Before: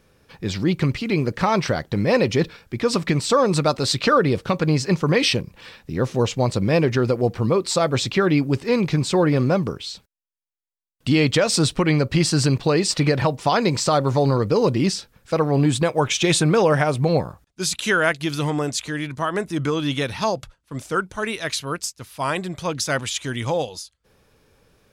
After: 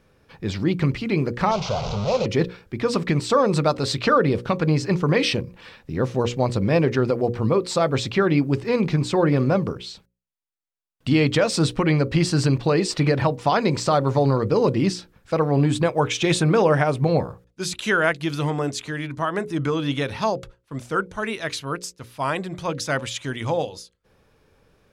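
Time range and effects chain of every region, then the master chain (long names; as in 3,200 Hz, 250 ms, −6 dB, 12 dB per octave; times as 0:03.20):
0:01.51–0:02.26: linear delta modulator 32 kbit/s, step −17 dBFS + phaser with its sweep stopped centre 730 Hz, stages 4
whole clip: high-shelf EQ 3,900 Hz −8 dB; mains-hum notches 60/120/180/240/300/360/420/480/540 Hz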